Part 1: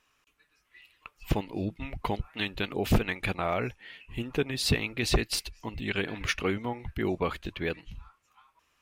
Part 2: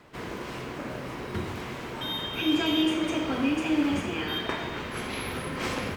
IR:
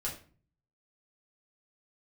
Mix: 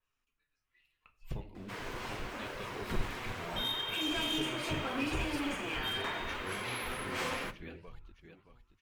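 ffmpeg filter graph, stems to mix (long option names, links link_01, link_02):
-filter_complex "[0:a]lowshelf=frequency=100:gain=9,volume=-16.5dB,asplit=3[link_01][link_02][link_03];[link_02]volume=-3.5dB[link_04];[link_03]volume=-6dB[link_05];[1:a]highpass=frequency=750:poles=1,volume=28dB,asoftclip=hard,volume=-28dB,adelay=1550,volume=0.5dB,asplit=2[link_06][link_07];[link_07]volume=-11dB[link_08];[2:a]atrim=start_sample=2205[link_09];[link_04][link_08]amix=inputs=2:normalize=0[link_10];[link_10][link_09]afir=irnorm=-1:irlink=0[link_11];[link_05]aecho=0:1:624|1248|1872|2496|3120:1|0.39|0.152|0.0593|0.0231[link_12];[link_01][link_06][link_11][link_12]amix=inputs=4:normalize=0,adynamicequalizer=threshold=0.00447:dfrequency=5300:dqfactor=1.4:tfrequency=5300:tqfactor=1.4:attack=5:release=100:ratio=0.375:range=2.5:mode=cutabove:tftype=bell,flanger=delay=1.8:depth=6.2:regen=-50:speed=0.76:shape=sinusoidal"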